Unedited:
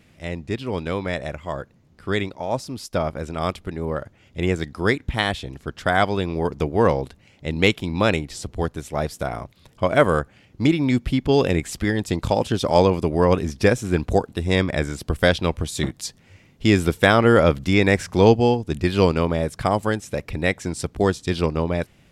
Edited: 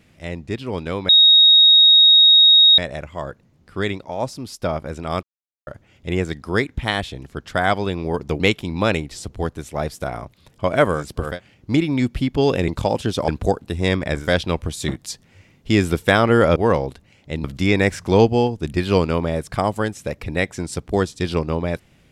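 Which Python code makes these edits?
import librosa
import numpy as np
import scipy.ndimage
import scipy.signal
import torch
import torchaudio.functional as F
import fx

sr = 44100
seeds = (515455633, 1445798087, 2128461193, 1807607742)

y = fx.edit(x, sr, fx.insert_tone(at_s=1.09, length_s=1.69, hz=3760.0, db=-7.5),
    fx.silence(start_s=3.54, length_s=0.44),
    fx.move(start_s=6.71, length_s=0.88, to_s=17.51),
    fx.cut(start_s=11.59, length_s=0.55),
    fx.cut(start_s=12.74, length_s=1.21),
    fx.move(start_s=14.91, length_s=0.28, to_s=10.19, crossfade_s=0.24), tone=tone)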